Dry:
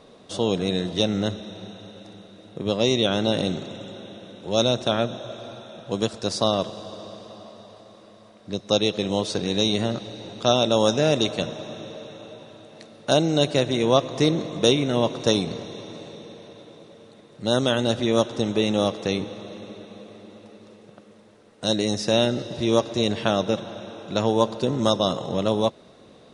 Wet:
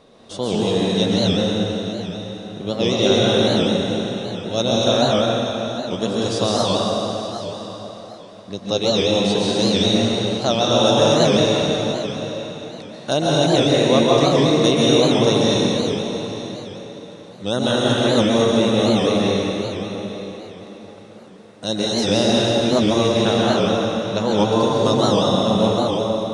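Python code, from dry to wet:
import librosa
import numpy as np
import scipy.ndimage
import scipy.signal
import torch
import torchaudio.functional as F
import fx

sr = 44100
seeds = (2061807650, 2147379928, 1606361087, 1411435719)

p1 = x + fx.echo_single(x, sr, ms=882, db=-16.5, dry=0)
p2 = fx.rev_plate(p1, sr, seeds[0], rt60_s=3.3, hf_ratio=0.85, predelay_ms=115, drr_db=-6.0)
p3 = fx.record_warp(p2, sr, rpm=78.0, depth_cents=160.0)
y = F.gain(torch.from_numpy(p3), -1.0).numpy()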